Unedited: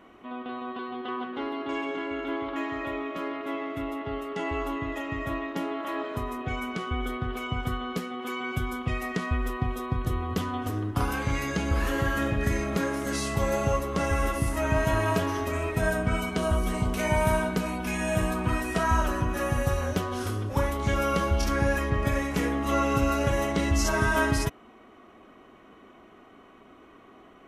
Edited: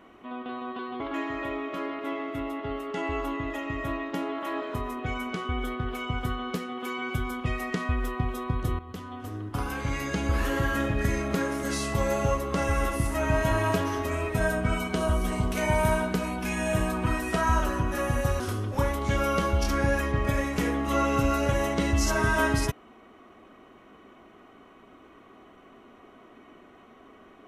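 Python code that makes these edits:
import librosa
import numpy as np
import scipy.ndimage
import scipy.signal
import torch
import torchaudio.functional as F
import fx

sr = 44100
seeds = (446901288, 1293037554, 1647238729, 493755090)

y = fx.edit(x, sr, fx.cut(start_s=1.0, length_s=1.42),
    fx.fade_in_from(start_s=10.21, length_s=1.53, floor_db=-13.0),
    fx.cut(start_s=19.82, length_s=0.36), tone=tone)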